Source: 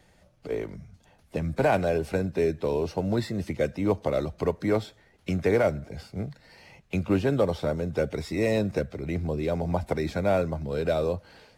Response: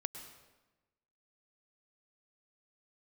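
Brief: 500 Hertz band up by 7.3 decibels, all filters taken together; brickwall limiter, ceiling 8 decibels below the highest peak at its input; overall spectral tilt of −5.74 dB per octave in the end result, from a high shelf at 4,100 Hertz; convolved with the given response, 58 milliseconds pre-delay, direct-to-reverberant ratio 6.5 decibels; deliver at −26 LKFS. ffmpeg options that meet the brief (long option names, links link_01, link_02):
-filter_complex "[0:a]equalizer=frequency=500:width_type=o:gain=8.5,highshelf=frequency=4100:gain=4.5,alimiter=limit=-13.5dB:level=0:latency=1,asplit=2[link_01][link_02];[1:a]atrim=start_sample=2205,adelay=58[link_03];[link_02][link_03]afir=irnorm=-1:irlink=0,volume=-5.5dB[link_04];[link_01][link_04]amix=inputs=2:normalize=0,volume=-1.5dB"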